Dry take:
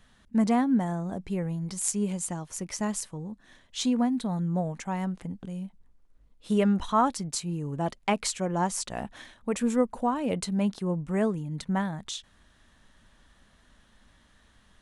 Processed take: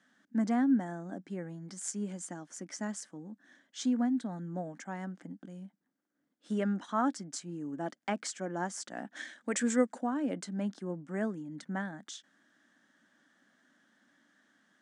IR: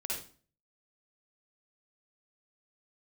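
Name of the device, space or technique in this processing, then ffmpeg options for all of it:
television speaker: -filter_complex "[0:a]highpass=f=200:w=0.5412,highpass=f=200:w=1.3066,equalizer=f=290:t=q:w=4:g=8,equalizer=f=440:t=q:w=4:g=-6,equalizer=f=1000:t=q:w=4:g=-7,equalizer=f=1600:t=q:w=4:g=7,equalizer=f=2600:t=q:w=4:g=-8,equalizer=f=4000:t=q:w=4:g=-7,lowpass=f=8000:w=0.5412,lowpass=f=8000:w=1.3066,asplit=3[s0][s1][s2];[s0]afade=t=out:st=9.15:d=0.02[s3];[s1]equalizer=f=500:t=o:w=1:g=5,equalizer=f=2000:t=o:w=1:g=8,equalizer=f=4000:t=o:w=1:g=7,equalizer=f=8000:t=o:w=1:g=12,afade=t=in:st=9.15:d=0.02,afade=t=out:st=9.97:d=0.02[s4];[s2]afade=t=in:st=9.97:d=0.02[s5];[s3][s4][s5]amix=inputs=3:normalize=0,volume=0.501"

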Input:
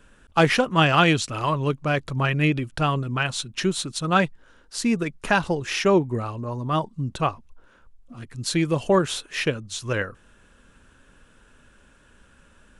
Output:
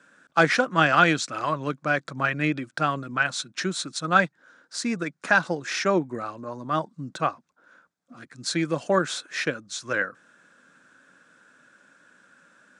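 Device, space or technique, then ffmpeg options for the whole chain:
television speaker: -af "highpass=f=180:w=0.5412,highpass=f=180:w=1.3066,equalizer=f=220:t=q:w=4:g=-6,equalizer=f=410:t=q:w=4:g=-8,equalizer=f=920:t=q:w=4:g=-5,equalizer=f=1500:t=q:w=4:g=6,equalizer=f=2900:t=q:w=4:g=-9,lowpass=f=8300:w=0.5412,lowpass=f=8300:w=1.3066"

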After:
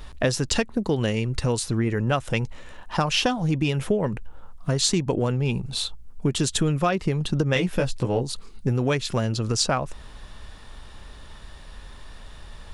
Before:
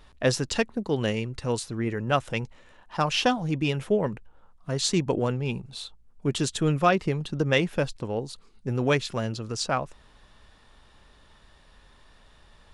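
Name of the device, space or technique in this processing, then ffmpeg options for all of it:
ASMR close-microphone chain: -filter_complex "[0:a]asettb=1/sr,asplit=3[s0][s1][s2];[s0]atrim=end=7.544[s3];[s1]atrim=start=7.54:end=8.23,asetpts=PTS-STARTPTS,afade=t=in:d=0.004:c=qsin,afade=t=out:st=0.686:d=0.004:c=qsin,asplit=2[s4][s5];[s5]adelay=16,volume=0.668[s6];[s4][s6]amix=inputs=2:normalize=0,atrim=end_sample=30429[s7];[s2]atrim=start=8.226[s8];[s3][s7]acrossfade=d=0.004:c1=hsin:c2=qsin[s9];[s9][s8]acrossfade=d=0.004:c1=qsin:c2=hsin,lowshelf=f=110:g=7,acompressor=threshold=0.0355:ratio=5,highshelf=f=7600:g=5.5,volume=2.82"

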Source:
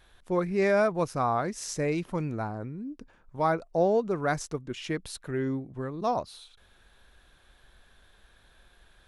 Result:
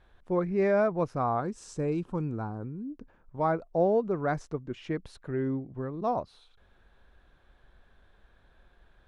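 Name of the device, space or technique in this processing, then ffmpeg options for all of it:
through cloth: -filter_complex "[0:a]asettb=1/sr,asplit=3[s0][s1][s2];[s0]atrim=end=1.404[s3];[s1]atrim=start=1.4:end=2.9,asetpts=PTS-STARTPTS,afade=t=in:d=0.004:c=qsin,afade=t=out:st=1.496:d=0.004:c=qsin,equalizer=f=630:t=o:w=0.33:g=-8,equalizer=f=2000:t=o:w=0.33:g=-11,equalizer=f=8000:t=o:w=0.33:g=9[s4];[s2]atrim=start=2.896[s5];[s3][s4]acrossfade=d=0.004:c1=hsin:c2=qsin[s6];[s6][s5]acrossfade=d=0.004:c1=qsin:c2=hsin,lowpass=8900,highshelf=f=2600:g=-16"

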